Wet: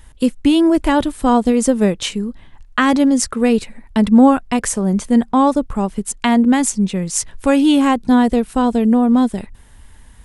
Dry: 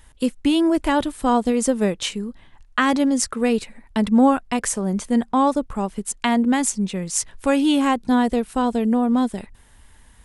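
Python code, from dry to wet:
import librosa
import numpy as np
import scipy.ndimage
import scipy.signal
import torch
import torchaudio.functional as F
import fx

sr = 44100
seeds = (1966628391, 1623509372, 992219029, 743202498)

y = fx.low_shelf(x, sr, hz=300.0, db=5.0)
y = y * 10.0 ** (3.0 / 20.0)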